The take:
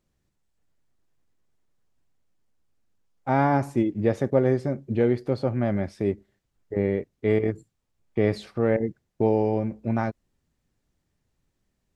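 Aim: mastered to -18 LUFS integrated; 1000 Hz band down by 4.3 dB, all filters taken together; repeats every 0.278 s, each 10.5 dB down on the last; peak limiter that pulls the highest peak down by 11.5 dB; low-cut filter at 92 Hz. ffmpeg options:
-af "highpass=92,equalizer=f=1k:t=o:g=-6,alimiter=limit=-20.5dB:level=0:latency=1,aecho=1:1:278|556|834:0.299|0.0896|0.0269,volume=14dB"

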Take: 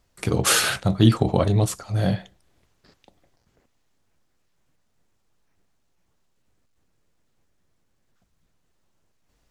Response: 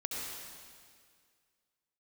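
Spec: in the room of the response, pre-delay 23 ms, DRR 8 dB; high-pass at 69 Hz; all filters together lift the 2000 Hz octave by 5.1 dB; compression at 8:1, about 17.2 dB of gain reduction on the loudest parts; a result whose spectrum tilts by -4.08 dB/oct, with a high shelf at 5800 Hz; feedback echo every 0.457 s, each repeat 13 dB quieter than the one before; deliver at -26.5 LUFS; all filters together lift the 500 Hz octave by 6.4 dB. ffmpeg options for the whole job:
-filter_complex "[0:a]highpass=69,equalizer=f=500:t=o:g=7.5,equalizer=f=2k:t=o:g=6,highshelf=f=5.8k:g=6,acompressor=threshold=-28dB:ratio=8,aecho=1:1:457|914|1371:0.224|0.0493|0.0108,asplit=2[a][b];[1:a]atrim=start_sample=2205,adelay=23[c];[b][c]afir=irnorm=-1:irlink=0,volume=-11dB[d];[a][d]amix=inputs=2:normalize=0,volume=6dB"

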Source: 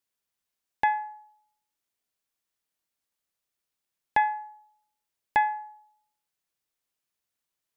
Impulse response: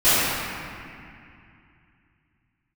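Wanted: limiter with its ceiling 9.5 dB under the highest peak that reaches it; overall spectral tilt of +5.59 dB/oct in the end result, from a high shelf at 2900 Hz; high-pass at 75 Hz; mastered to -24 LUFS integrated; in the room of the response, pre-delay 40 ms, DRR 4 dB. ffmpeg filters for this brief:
-filter_complex "[0:a]highpass=75,highshelf=f=2.9k:g=-9,alimiter=limit=-23dB:level=0:latency=1,asplit=2[a][b];[1:a]atrim=start_sample=2205,adelay=40[c];[b][c]afir=irnorm=-1:irlink=0,volume=-27dB[d];[a][d]amix=inputs=2:normalize=0,volume=11dB"

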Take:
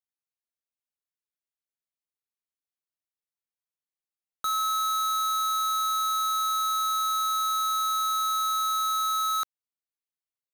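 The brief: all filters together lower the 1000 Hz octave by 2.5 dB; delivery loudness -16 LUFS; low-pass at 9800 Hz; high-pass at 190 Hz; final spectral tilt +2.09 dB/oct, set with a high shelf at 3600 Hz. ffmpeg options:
-af "highpass=190,lowpass=9.8k,equalizer=f=1k:t=o:g=-5,highshelf=f=3.6k:g=6.5,volume=9.5dB"

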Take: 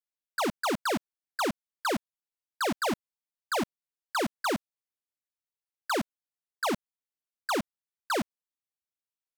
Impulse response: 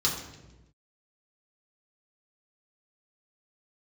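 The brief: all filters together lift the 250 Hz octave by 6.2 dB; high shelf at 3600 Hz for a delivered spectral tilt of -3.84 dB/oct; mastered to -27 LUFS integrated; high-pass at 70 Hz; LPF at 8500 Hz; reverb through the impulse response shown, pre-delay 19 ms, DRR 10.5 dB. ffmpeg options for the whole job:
-filter_complex "[0:a]highpass=70,lowpass=8.5k,equalizer=f=250:t=o:g=7.5,highshelf=f=3.6k:g=5,asplit=2[a][b];[1:a]atrim=start_sample=2205,adelay=19[c];[b][c]afir=irnorm=-1:irlink=0,volume=-19.5dB[d];[a][d]amix=inputs=2:normalize=0,volume=2dB"

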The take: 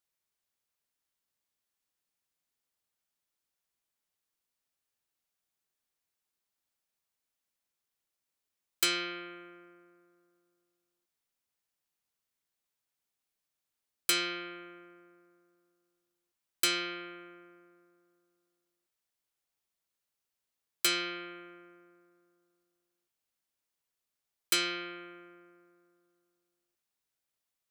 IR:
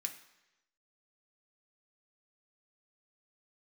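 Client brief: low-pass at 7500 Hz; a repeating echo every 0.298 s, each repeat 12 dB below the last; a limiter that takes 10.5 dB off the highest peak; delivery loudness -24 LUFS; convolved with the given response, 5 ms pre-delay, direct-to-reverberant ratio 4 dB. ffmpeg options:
-filter_complex "[0:a]lowpass=7.5k,alimiter=level_in=1.5dB:limit=-24dB:level=0:latency=1,volume=-1.5dB,aecho=1:1:298|596|894:0.251|0.0628|0.0157,asplit=2[a][b];[1:a]atrim=start_sample=2205,adelay=5[c];[b][c]afir=irnorm=-1:irlink=0,volume=-2.5dB[d];[a][d]amix=inputs=2:normalize=0,volume=12dB"

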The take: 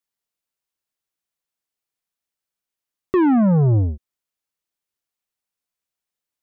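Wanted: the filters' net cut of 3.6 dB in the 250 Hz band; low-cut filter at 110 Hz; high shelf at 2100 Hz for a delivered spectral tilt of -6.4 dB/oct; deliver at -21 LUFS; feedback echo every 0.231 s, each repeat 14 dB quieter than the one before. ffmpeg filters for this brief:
-af "highpass=110,equalizer=f=250:t=o:g=-4.5,highshelf=f=2.1k:g=-4,aecho=1:1:231|462:0.2|0.0399,volume=-0.5dB"

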